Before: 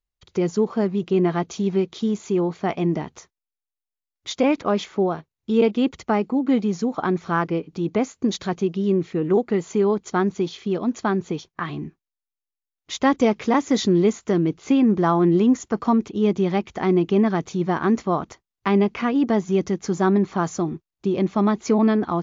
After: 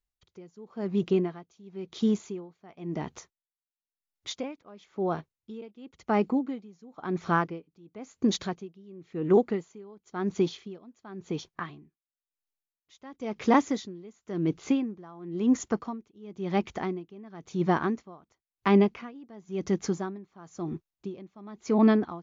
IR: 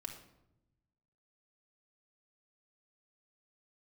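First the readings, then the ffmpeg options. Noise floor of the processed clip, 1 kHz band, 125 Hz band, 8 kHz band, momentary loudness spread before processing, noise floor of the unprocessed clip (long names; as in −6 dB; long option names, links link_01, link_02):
below −85 dBFS, −7.5 dB, −9.0 dB, can't be measured, 8 LU, below −85 dBFS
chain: -af "aeval=exprs='val(0)*pow(10,-27*(0.5-0.5*cos(2*PI*0.96*n/s))/20)':channel_layout=same,volume=-1.5dB"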